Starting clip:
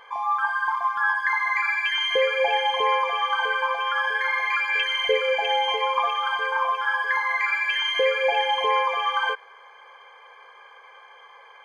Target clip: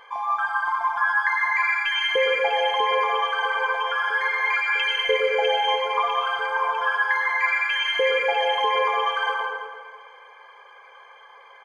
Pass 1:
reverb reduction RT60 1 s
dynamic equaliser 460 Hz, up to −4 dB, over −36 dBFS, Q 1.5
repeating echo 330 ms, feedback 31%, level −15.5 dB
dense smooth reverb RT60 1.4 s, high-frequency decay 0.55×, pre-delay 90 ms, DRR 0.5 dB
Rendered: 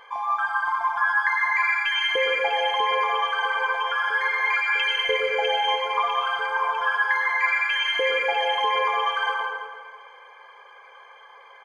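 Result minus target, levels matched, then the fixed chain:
500 Hz band −2.5 dB
reverb reduction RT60 1 s
dynamic equaliser 160 Hz, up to −4 dB, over −36 dBFS, Q 1.5
repeating echo 330 ms, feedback 31%, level −15.5 dB
dense smooth reverb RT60 1.4 s, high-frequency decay 0.55×, pre-delay 90 ms, DRR 0.5 dB

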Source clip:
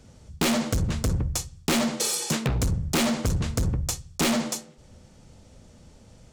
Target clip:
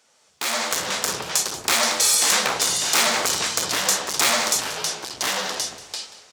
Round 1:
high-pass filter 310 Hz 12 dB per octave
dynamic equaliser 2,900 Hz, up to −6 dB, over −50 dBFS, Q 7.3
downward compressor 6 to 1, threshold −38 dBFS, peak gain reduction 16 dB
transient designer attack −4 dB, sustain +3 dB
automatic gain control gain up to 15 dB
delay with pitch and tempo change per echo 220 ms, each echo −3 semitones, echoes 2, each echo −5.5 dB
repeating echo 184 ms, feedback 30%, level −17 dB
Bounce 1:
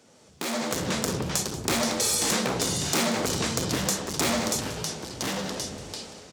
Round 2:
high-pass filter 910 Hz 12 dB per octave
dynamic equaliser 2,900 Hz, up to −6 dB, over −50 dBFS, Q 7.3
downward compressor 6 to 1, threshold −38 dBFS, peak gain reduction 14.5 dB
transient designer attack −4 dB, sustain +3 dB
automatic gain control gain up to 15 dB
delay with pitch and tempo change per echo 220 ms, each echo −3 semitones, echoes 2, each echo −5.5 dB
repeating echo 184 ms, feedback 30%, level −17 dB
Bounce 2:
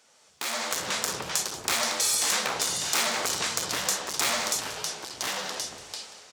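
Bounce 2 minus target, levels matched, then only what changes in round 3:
downward compressor: peak gain reduction +8 dB
change: downward compressor 6 to 1, threshold −28.5 dBFS, peak gain reduction 6.5 dB

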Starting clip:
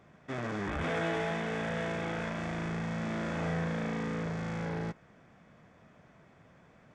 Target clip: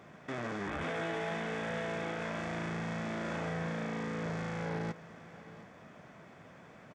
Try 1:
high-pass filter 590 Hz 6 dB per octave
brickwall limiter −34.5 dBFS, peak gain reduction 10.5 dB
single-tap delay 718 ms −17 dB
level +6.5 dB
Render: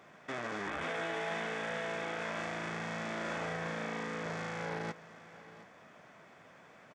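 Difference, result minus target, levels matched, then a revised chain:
125 Hz band −5.5 dB
high-pass filter 160 Hz 6 dB per octave
brickwall limiter −34.5 dBFS, peak gain reduction 12 dB
single-tap delay 718 ms −17 dB
level +6.5 dB

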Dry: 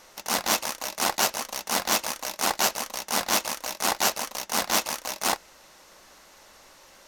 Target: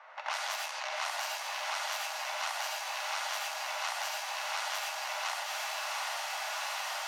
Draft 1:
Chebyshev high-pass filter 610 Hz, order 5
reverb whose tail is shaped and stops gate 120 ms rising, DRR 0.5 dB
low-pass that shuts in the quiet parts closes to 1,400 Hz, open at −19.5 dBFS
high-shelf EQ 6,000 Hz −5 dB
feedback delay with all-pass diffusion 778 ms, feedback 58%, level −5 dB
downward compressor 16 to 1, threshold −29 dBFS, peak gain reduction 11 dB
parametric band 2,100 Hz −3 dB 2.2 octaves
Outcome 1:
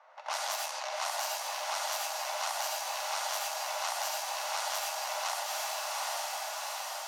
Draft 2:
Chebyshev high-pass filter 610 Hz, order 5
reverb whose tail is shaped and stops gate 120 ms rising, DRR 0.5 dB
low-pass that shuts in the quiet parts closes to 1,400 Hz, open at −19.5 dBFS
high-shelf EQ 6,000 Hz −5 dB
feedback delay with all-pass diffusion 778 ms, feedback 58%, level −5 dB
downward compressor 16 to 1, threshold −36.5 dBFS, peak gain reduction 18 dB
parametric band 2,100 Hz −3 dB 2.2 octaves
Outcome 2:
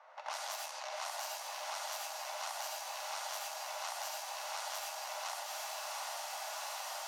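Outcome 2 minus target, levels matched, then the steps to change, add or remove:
2,000 Hz band −4.0 dB
change: parametric band 2,100 Hz +7.5 dB 2.2 octaves

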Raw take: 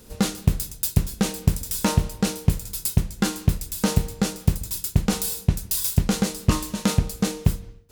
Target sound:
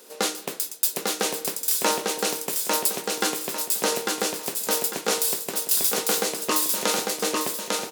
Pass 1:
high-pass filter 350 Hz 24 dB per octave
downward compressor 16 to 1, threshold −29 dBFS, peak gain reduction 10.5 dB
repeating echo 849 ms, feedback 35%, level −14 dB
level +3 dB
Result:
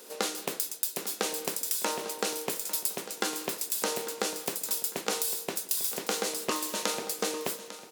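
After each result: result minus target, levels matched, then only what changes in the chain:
downward compressor: peak gain reduction +10.5 dB; echo-to-direct −11.5 dB
remove: downward compressor 16 to 1, threshold −29 dBFS, peak gain reduction 10.5 dB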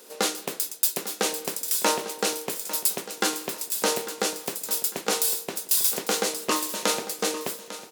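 echo-to-direct −11.5 dB
change: repeating echo 849 ms, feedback 35%, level −2.5 dB

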